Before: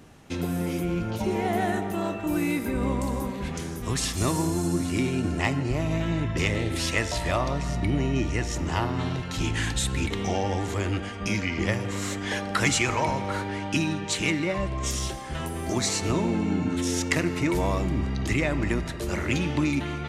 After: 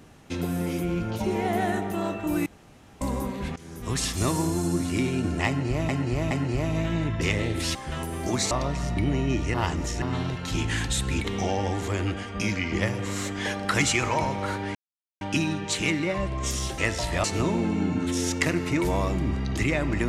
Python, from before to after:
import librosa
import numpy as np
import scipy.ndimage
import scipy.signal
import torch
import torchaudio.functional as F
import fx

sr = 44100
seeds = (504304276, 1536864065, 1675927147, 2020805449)

y = fx.edit(x, sr, fx.room_tone_fill(start_s=2.46, length_s=0.55),
    fx.fade_in_from(start_s=3.56, length_s=0.39, floor_db=-19.5),
    fx.repeat(start_s=5.47, length_s=0.42, count=3),
    fx.swap(start_s=6.91, length_s=0.46, other_s=15.18, other_length_s=0.76),
    fx.reverse_span(start_s=8.4, length_s=0.48),
    fx.insert_silence(at_s=13.61, length_s=0.46), tone=tone)